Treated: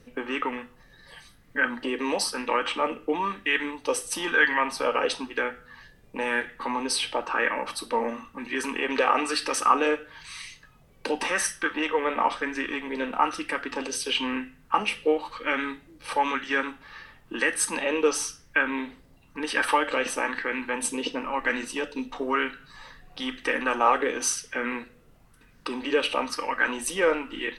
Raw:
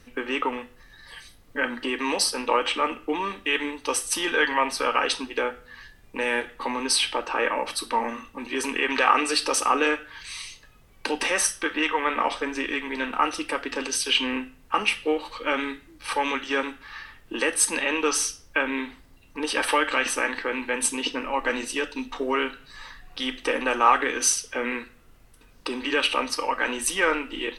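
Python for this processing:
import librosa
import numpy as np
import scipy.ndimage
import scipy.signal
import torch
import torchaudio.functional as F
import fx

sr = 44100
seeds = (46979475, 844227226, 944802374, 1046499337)

y = fx.peak_eq(x, sr, hz=160.0, db=8.5, octaves=1.3)
y = fx.bell_lfo(y, sr, hz=1.0, low_hz=470.0, high_hz=1900.0, db=9)
y = y * librosa.db_to_amplitude(-5.0)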